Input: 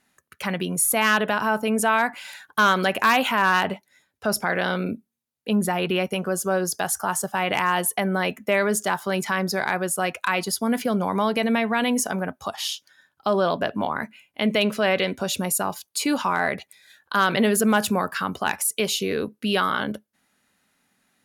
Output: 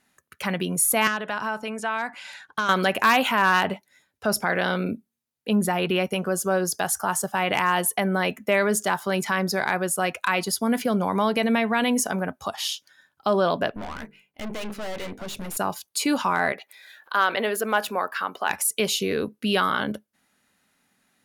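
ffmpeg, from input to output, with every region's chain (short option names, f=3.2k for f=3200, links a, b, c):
-filter_complex "[0:a]asettb=1/sr,asplit=3[a][b][c];[a]atrim=end=1.074[d];[b]atrim=start=1.07:end=2.69,asetpts=PTS-STARTPTS,afade=t=in:d=0.004:c=qsin,afade=t=out:st=1.616:d=0.004:c=qsin,lowpass=7k,acrossover=split=820|2300|4800[e][f][g][h];[e]acompressor=threshold=-35dB:ratio=3[i];[f]acompressor=threshold=-28dB:ratio=3[j];[g]acompressor=threshold=-44dB:ratio=3[k];[h]acompressor=threshold=-43dB:ratio=3[l];[i][j][k][l]amix=inputs=4:normalize=0[m];[c]atrim=start=2.686[n];[d][m]acrossfade=d=0.004:c1=hsin:c2=qsin[o];[o][n]acrossfade=d=0.004:c1=qsin:c2=hsin,asettb=1/sr,asplit=3[p][q][r];[p]atrim=end=13.704[s];[q]atrim=start=13.7:end=15.57,asetpts=PTS-STARTPTS,afade=t=in:d=0.004:c=qsin,afade=t=out:st=1.866:d=0.004:c=qsin,equalizer=f=7.7k:t=o:w=2.1:g=-4.5,bandreject=f=50:t=h:w=6,bandreject=f=100:t=h:w=6,bandreject=f=150:t=h:w=6,bandreject=f=200:t=h:w=6,bandreject=f=250:t=h:w=6,bandreject=f=300:t=h:w=6,bandreject=f=350:t=h:w=6,bandreject=f=400:t=h:w=6,bandreject=f=450:t=h:w=6,bandreject=f=500:t=h:w=6,aeval=exprs='(tanh(35.5*val(0)+0.75)-tanh(0.75))/35.5':c=same[t];[r]atrim=start=15.566[u];[s][t]acrossfade=d=0.004:c1=hsin:c2=qsin[v];[v][u]acrossfade=d=0.004:c1=qsin:c2=hsin,asettb=1/sr,asplit=3[w][x][y];[w]atrim=end=16.524[z];[x]atrim=start=16.52:end=18.5,asetpts=PTS-STARTPTS,afade=t=in:d=0.004:c=qsin,afade=t=out:st=1.976:d=0.004:c=qsin,highpass=460,equalizer=f=7.9k:t=o:w=1.5:g=-10,acompressor=mode=upward:threshold=-38dB:ratio=2.5:attack=3.2:release=140:knee=2.83:detection=peak[aa];[y]atrim=start=18.496[ab];[z][aa]acrossfade=d=0.004:c1=hsin:c2=qsin[ac];[ac][ab]acrossfade=d=0.004:c1=qsin:c2=hsin"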